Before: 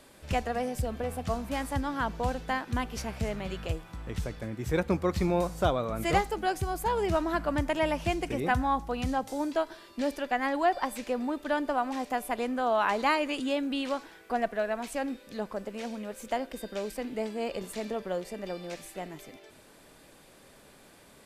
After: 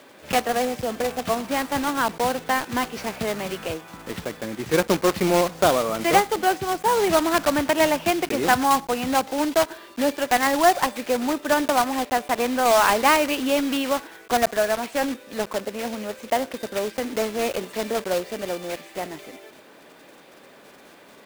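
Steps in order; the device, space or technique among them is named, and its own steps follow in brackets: early digital voice recorder (BPF 230–3500 Hz; block floating point 3-bit); gain +8.5 dB

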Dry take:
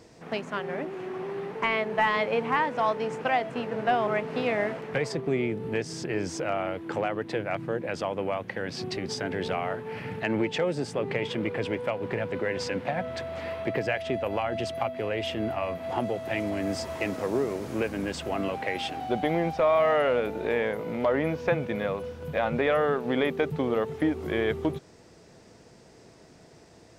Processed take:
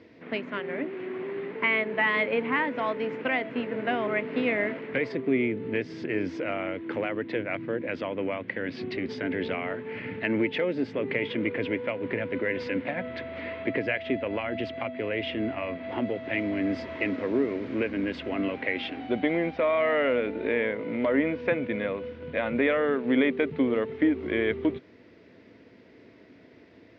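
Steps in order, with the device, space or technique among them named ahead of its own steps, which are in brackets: guitar cabinet (speaker cabinet 93–3600 Hz, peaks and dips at 150 Hz -10 dB, 270 Hz +8 dB, 790 Hz -10 dB, 1200 Hz -4 dB, 2100 Hz +6 dB)

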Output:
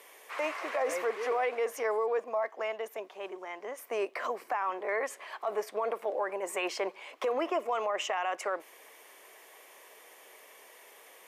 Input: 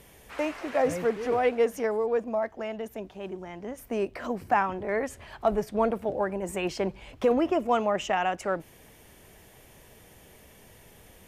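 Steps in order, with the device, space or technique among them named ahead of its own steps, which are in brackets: laptop speaker (HPF 410 Hz 24 dB/oct; bell 1100 Hz +8.5 dB 0.28 oct; bell 2100 Hz +5 dB 0.41 oct; limiter -22.5 dBFS, peak gain reduction 13.5 dB)

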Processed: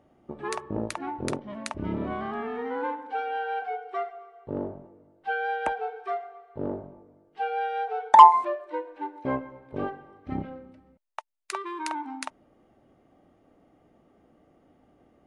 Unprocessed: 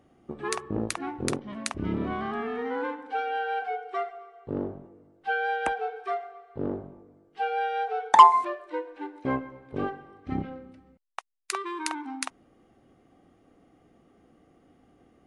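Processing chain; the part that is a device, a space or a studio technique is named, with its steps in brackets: inside a helmet (high shelf 4400 Hz -6 dB; small resonant body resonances 610/890 Hz, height 9 dB); gain -1.5 dB

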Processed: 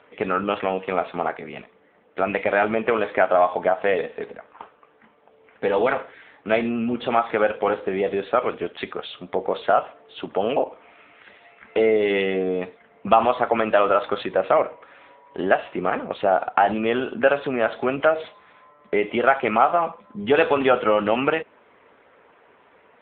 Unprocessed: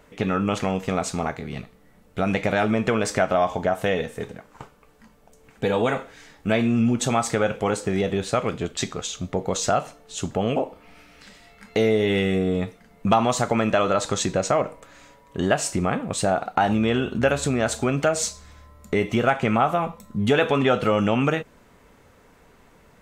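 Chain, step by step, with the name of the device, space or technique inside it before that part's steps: telephone (BPF 380–3400 Hz; gain +4.5 dB; AMR-NB 7.95 kbps 8000 Hz)

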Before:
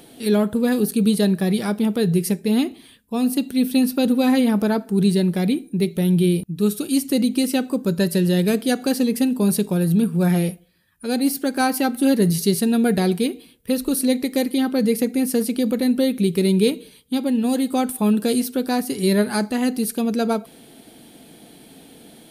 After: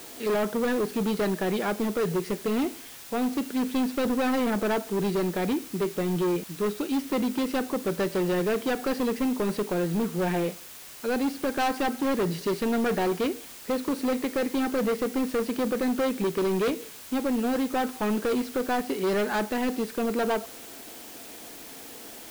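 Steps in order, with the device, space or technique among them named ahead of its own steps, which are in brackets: aircraft radio (BPF 370–2300 Hz; hard clip -25 dBFS, distortion -8 dB; white noise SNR 17 dB); gain +2.5 dB

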